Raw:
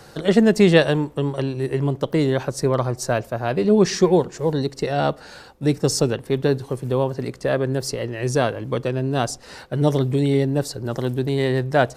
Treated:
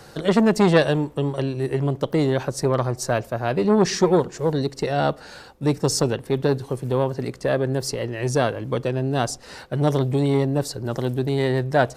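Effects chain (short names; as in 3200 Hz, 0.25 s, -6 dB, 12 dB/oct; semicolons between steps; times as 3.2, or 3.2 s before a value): core saturation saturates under 700 Hz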